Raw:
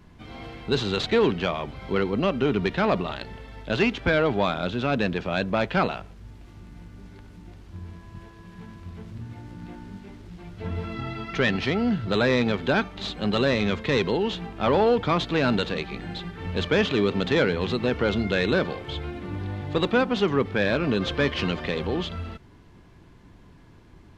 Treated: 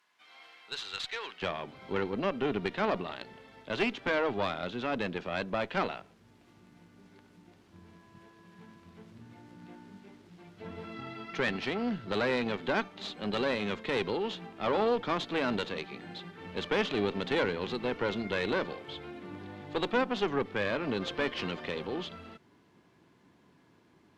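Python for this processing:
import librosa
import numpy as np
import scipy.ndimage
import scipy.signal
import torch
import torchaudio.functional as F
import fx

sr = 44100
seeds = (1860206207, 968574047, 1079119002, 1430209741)

y = fx.highpass(x, sr, hz=fx.steps((0.0, 1200.0), (1.42, 190.0)), slope=12)
y = fx.tube_stage(y, sr, drive_db=13.0, bias=0.8)
y = F.gain(torch.from_numpy(y), -2.5).numpy()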